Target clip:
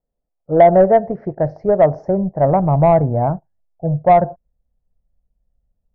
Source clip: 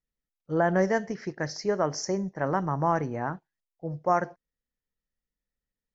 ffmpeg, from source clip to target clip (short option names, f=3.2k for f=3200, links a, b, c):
-af "lowpass=f=660:t=q:w=4.2,acontrast=57,asubboost=boost=8:cutoff=130,volume=2dB"